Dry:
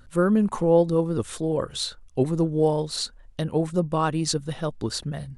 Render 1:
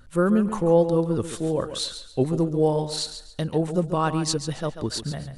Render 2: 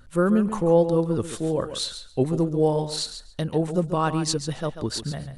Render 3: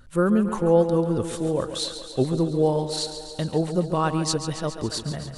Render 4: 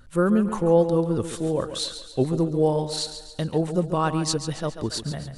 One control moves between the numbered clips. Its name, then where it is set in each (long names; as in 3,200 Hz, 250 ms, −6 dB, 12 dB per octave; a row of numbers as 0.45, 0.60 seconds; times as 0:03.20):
feedback echo with a high-pass in the loop, feedback: 29, 16, 71, 48%